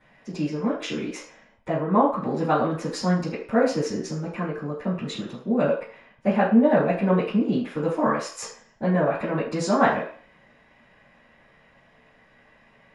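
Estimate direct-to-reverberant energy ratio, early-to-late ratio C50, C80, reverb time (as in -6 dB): -13.0 dB, 5.5 dB, 9.5 dB, 0.45 s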